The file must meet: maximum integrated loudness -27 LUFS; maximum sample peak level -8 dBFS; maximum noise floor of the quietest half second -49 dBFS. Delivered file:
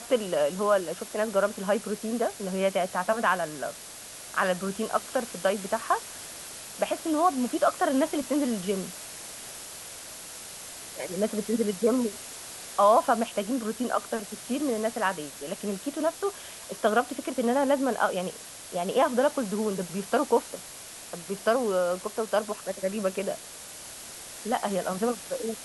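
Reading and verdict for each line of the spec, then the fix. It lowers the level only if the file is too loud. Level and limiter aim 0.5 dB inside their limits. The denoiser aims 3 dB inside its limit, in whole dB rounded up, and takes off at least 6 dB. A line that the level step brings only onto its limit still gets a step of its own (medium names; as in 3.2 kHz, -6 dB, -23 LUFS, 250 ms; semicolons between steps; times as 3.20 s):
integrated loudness -28.0 LUFS: pass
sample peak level -9.5 dBFS: pass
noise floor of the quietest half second -43 dBFS: fail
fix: noise reduction 9 dB, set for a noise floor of -43 dBFS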